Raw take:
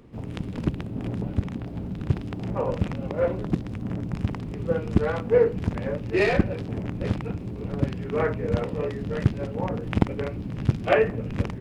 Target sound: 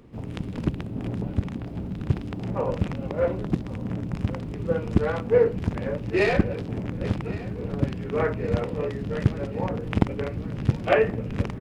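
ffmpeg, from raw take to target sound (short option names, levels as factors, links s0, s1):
-af "aecho=1:1:1116|2232|3348|4464|5580:0.126|0.0743|0.0438|0.0259|0.0153"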